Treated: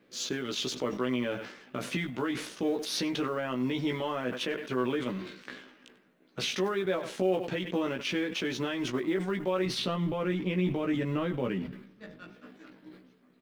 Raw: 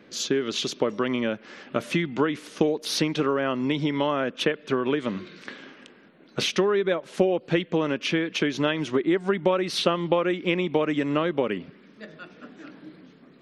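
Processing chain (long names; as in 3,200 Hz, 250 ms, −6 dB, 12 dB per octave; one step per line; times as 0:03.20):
mu-law and A-law mismatch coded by A
0:09.66–0:12.32: bass and treble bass +10 dB, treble −3 dB
brickwall limiter −16.5 dBFS, peak gain reduction 11.5 dB
double-tracking delay 16 ms −3 dB
single-tap delay 96 ms −22.5 dB
level that may fall only so fast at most 77 dB per second
level −6 dB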